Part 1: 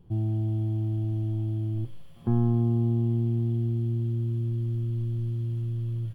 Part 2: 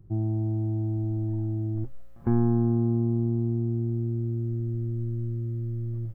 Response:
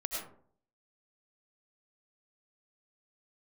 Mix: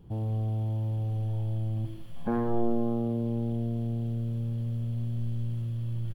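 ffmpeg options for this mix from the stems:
-filter_complex "[0:a]aeval=exprs='0.224*(cos(1*acos(clip(val(0)/0.224,-1,1)))-cos(1*PI/2))+0.0708*(cos(5*acos(clip(val(0)/0.224,-1,1)))-cos(5*PI/2))':c=same,highpass=42,volume=0.596[s0];[1:a]adelay=2,volume=0.501,asplit=2[s1][s2];[s2]volume=0.473[s3];[2:a]atrim=start_sample=2205[s4];[s3][s4]afir=irnorm=-1:irlink=0[s5];[s0][s1][s5]amix=inputs=3:normalize=0"

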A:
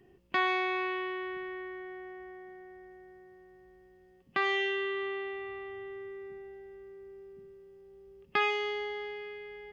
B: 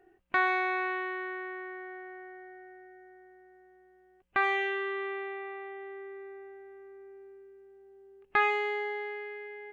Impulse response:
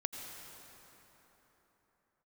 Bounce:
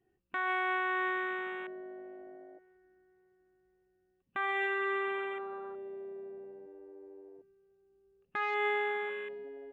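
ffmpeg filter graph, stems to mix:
-filter_complex "[0:a]equalizer=f=81:t=o:w=2:g=3.5,flanger=delay=6.1:depth=8.4:regen=-88:speed=1.8:shape=sinusoidal,volume=0.2[s0];[1:a]afwtdn=0.0112,adynamicequalizer=threshold=0.0126:dfrequency=1300:dqfactor=1.1:tfrequency=1300:tqfactor=1.1:attack=5:release=100:ratio=0.375:range=2.5:mode=boostabove:tftype=bell,volume=1.06[s1];[s0][s1]amix=inputs=2:normalize=0,alimiter=limit=0.0631:level=0:latency=1:release=174"

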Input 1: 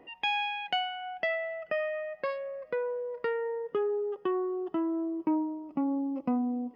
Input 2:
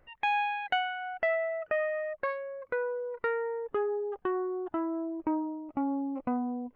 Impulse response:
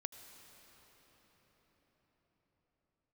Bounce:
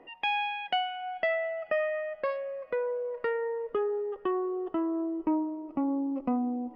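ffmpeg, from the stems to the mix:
-filter_complex "[0:a]lowshelf=f=220:g=-9.5,volume=1.19,asplit=2[s0][s1];[s1]volume=0.335[s2];[1:a]asubboost=boost=10.5:cutoff=92,volume=0.168[s3];[2:a]atrim=start_sample=2205[s4];[s2][s4]afir=irnorm=-1:irlink=0[s5];[s0][s3][s5]amix=inputs=3:normalize=0,aemphasis=mode=reproduction:type=75kf"

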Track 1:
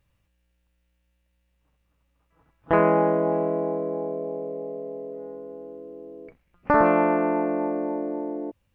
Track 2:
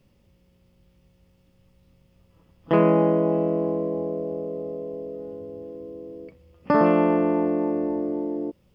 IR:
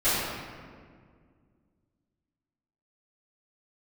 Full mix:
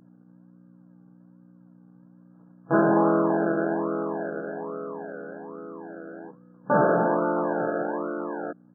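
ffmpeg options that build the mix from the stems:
-filter_complex "[0:a]aeval=exprs='val(0)+0.01*(sin(2*PI*60*n/s)+sin(2*PI*2*60*n/s)/2+sin(2*PI*3*60*n/s)/3+sin(2*PI*4*60*n/s)/4+sin(2*PI*5*60*n/s)/5)':c=same,volume=0.562[s0];[1:a]acrusher=samples=35:mix=1:aa=0.000001:lfo=1:lforange=21:lforate=1.2,volume=5.96,asoftclip=hard,volume=0.168,volume=-1,adelay=13,volume=0.841[s1];[s0][s1]amix=inputs=2:normalize=0,afftfilt=real='re*between(b*sr/4096,120,1700)':imag='im*between(b*sr/4096,120,1700)':win_size=4096:overlap=0.75"

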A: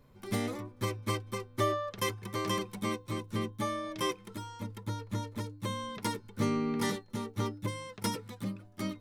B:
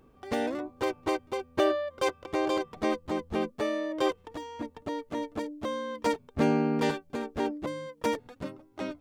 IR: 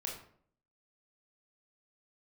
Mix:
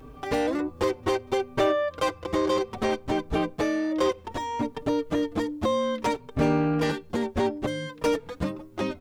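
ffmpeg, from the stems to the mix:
-filter_complex "[0:a]crystalizer=i=9.5:c=0,lowpass=3300,volume=0.178[s0];[1:a]acompressor=threshold=0.0126:ratio=2,aeval=exprs='0.126*sin(PI/2*2.51*val(0)/0.126)':c=same,asplit=2[s1][s2];[s2]adelay=4.7,afreqshift=0.64[s3];[s1][s3]amix=inputs=2:normalize=1,volume=1.33,asplit=2[s4][s5];[s5]volume=0.0794[s6];[2:a]atrim=start_sample=2205[s7];[s6][s7]afir=irnorm=-1:irlink=0[s8];[s0][s4][s8]amix=inputs=3:normalize=0,lowshelf=f=110:g=5"

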